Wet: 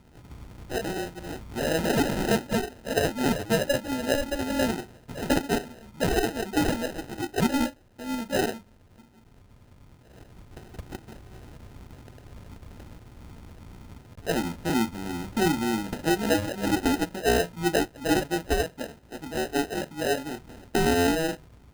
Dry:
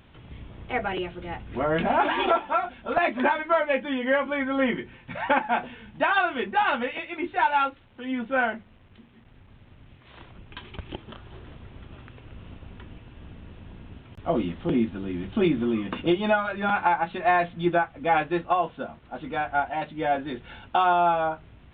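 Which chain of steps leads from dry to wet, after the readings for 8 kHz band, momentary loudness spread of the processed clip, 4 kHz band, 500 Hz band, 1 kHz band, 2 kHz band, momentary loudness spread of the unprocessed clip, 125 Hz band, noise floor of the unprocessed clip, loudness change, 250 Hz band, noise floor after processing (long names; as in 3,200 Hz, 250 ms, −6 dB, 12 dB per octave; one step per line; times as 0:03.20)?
can't be measured, 19 LU, +3.5 dB, −0.5 dB, −8.0 dB, −4.5 dB, 18 LU, +3.5 dB, −53 dBFS, −2.0 dB, +1.5 dB, −55 dBFS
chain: decimation without filtering 39×
level −1.5 dB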